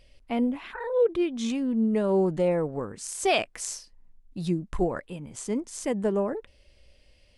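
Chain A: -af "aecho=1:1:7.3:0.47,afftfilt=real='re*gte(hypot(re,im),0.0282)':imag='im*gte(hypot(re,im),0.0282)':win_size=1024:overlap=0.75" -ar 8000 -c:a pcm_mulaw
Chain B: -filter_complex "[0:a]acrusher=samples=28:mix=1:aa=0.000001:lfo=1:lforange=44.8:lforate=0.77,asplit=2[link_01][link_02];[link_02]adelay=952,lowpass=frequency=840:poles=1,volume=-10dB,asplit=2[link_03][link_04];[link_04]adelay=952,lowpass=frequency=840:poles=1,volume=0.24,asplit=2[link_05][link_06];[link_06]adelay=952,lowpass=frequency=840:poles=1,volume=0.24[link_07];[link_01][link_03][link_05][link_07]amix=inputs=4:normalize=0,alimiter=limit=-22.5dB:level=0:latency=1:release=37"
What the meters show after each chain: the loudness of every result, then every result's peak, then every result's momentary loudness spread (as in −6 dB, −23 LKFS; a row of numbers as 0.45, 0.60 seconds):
−27.5, −31.5 LKFS; −11.5, −22.5 dBFS; 12, 11 LU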